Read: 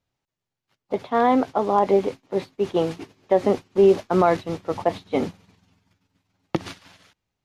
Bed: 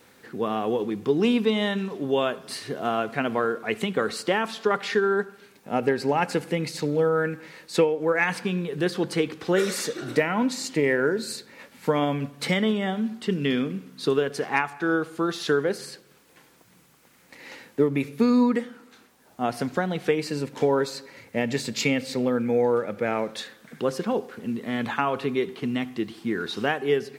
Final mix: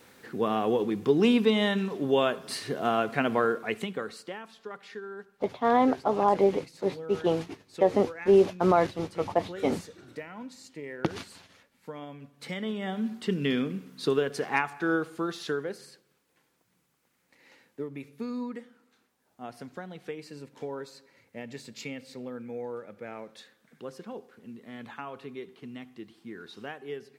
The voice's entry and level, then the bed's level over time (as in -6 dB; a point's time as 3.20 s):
4.50 s, -4.0 dB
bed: 3.52 s -0.5 dB
4.45 s -18 dB
12.19 s -18 dB
13.07 s -3 dB
14.95 s -3 dB
16.23 s -15 dB